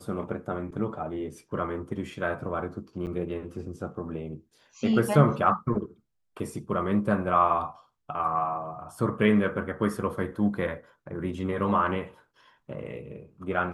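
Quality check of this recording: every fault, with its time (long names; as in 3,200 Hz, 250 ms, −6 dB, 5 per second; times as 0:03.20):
0:03.06–0:03.07: drop-out 8.8 ms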